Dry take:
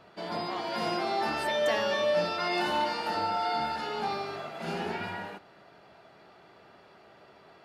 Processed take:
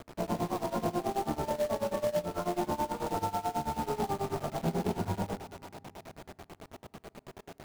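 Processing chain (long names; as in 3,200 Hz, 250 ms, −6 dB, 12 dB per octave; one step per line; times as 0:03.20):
loose part that buzzes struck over −51 dBFS, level −22 dBFS
low-pass filter 1,100 Hz 24 dB per octave
feedback echo with a high-pass in the loop 507 ms, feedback 60%, high-pass 850 Hz, level −14.5 dB
amplitude tremolo 9.2 Hz, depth 94%
log-companded quantiser 4 bits
low-shelf EQ 170 Hz +3.5 dB
on a send at −23 dB: convolution reverb RT60 2.3 s, pre-delay 4 ms
on the sum: downward compressor 4 to 1, threshold −37 dBFS, peak gain reduction 13 dB
low-shelf EQ 390 Hz +8 dB
level +5.5 dB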